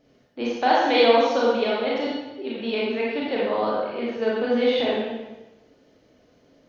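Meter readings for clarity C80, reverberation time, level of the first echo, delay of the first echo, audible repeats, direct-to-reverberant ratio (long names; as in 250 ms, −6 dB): 1.5 dB, 1.1 s, no echo audible, no echo audible, no echo audible, −6.0 dB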